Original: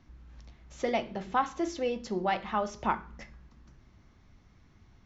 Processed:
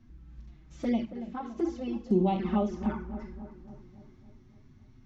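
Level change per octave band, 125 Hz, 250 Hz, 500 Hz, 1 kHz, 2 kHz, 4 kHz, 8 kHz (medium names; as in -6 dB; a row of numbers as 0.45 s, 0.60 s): +9.0 dB, +7.5 dB, -0.5 dB, -6.0 dB, -10.5 dB, -7.5 dB, no reading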